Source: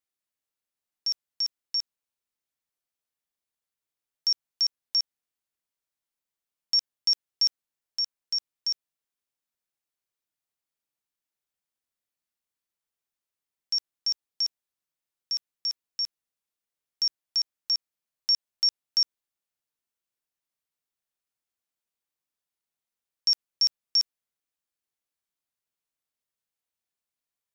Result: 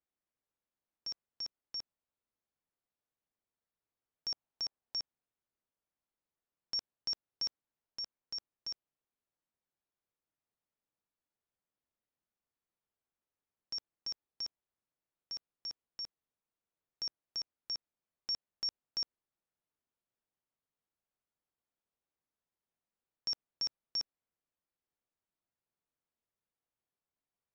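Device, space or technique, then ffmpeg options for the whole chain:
through cloth: -filter_complex "[0:a]asettb=1/sr,asplit=3[a][b][c];[a]atrim=end=4.324[d];[b]atrim=start=4.32:end=4.97,asetpts=PTS-STARTPTS,afade=t=in:d=0.004:c=qsin,afade=t=out:st=0.646:d=0.004:c=qsin,equalizer=f=780:t=o:w=0.77:g=4.5[e];[c]atrim=start=4.966[f];[d][e]acrossfade=d=0.004:c1=hsin:c2=qsin[g];[g][f]acrossfade=d=0.004:c1=qsin:c2=hsin,lowpass=7.8k,highshelf=f=2.1k:g=-17.5,volume=3dB"

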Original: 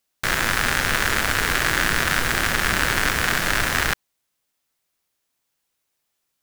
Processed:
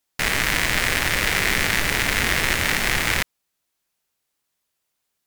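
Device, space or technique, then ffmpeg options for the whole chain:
nightcore: -af "asetrate=53802,aresample=44100"

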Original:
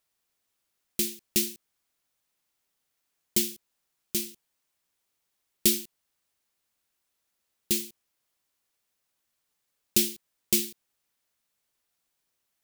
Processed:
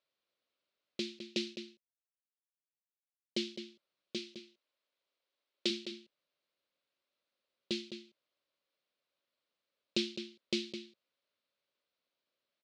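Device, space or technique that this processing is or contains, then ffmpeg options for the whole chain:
kitchen radio: -filter_complex "[0:a]asettb=1/sr,asplit=3[a][b][c];[a]atrim=end=1.304[d];[b]atrim=start=1.3:end=3.46,asetpts=PTS-STARTPTS,afade=t=in:d=0.004:c=qsin,afade=t=out:st=2.156:d=0.004:c=qsin,agate=range=-33dB:threshold=-34dB:ratio=3:detection=peak[e];[c]atrim=start=3.456[f];[d][e]acrossfade=d=0.004:c1=hsin:c2=qsin[g];[g][f]acrossfade=d=0.004:c1=qsin:c2=hsin,asplit=3[h][i][j];[h]afade=t=out:st=4.17:d=0.02[k];[i]highpass=290,afade=t=in:st=4.17:d=0.02,afade=t=out:st=5.69:d=0.02[l];[j]afade=t=in:st=5.69:d=0.02[m];[k][l][m]amix=inputs=3:normalize=0,highpass=170,equalizer=f=190:t=q:w=4:g=-3,equalizer=f=560:t=q:w=4:g=9,equalizer=f=820:t=q:w=4:g=-7,equalizer=f=1.8k:t=q:w=4:g=-4,equalizer=f=4.1k:t=q:w=4:g=3,lowpass=f=4.3k:w=0.5412,lowpass=f=4.3k:w=1.3066,asplit=2[n][o];[o]adelay=209.9,volume=-9dB,highshelf=f=4k:g=-4.72[p];[n][p]amix=inputs=2:normalize=0,volume=-4dB"

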